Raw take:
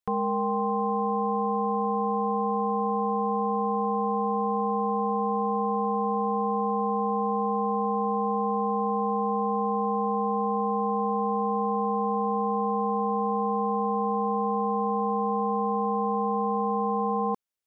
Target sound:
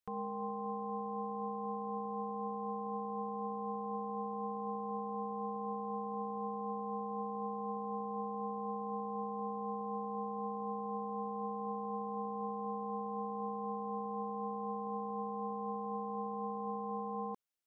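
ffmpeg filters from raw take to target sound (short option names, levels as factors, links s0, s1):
-af "alimiter=level_in=1.78:limit=0.0631:level=0:latency=1:release=46,volume=0.562,volume=0.668"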